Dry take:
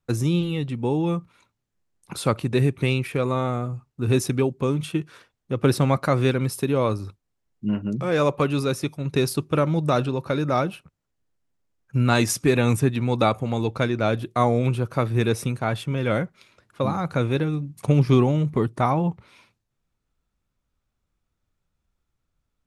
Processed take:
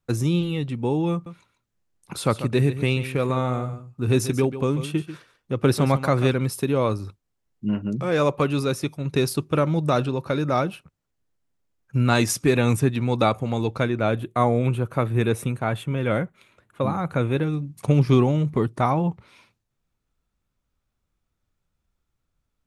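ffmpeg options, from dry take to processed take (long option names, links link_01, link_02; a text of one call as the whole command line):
ffmpeg -i in.wav -filter_complex "[0:a]asettb=1/sr,asplit=3[link_01][link_02][link_03];[link_01]atrim=end=1.124[link_04];[link_02]atrim=start=1.12:end=6.33,asetpts=PTS-STARTPTS,afade=type=in:duration=0.004:curve=qsin,afade=type=out:start_time=5.206:duration=0.004:curve=qsin,aecho=1:1:141:0.251,atrim=end_sample=229761[link_05];[link_03]atrim=start=6.326[link_06];[link_04][link_05]acrossfade=duration=0.004:curve1=hsin:curve2=qsin[link_07];[link_07][link_06]acrossfade=duration=0.004:curve1=qsin:curve2=hsin,asettb=1/sr,asplit=3[link_08][link_09][link_10];[link_08]atrim=end=13.824[link_11];[link_09]atrim=start=13.82:end=17.43,asetpts=PTS-STARTPTS,afade=type=in:duration=0.004:curve=qsin,afade=type=out:start_time=3.606:duration=0.004:curve=qsin,equalizer=frequency=5100:width=2.3:gain=-12[link_12];[link_10]atrim=start=17.426[link_13];[link_11][link_12]acrossfade=duration=0.004:curve1=hsin:curve2=qsin[link_14];[link_14][link_13]acrossfade=duration=0.004:curve1=qsin:curve2=hsin" out.wav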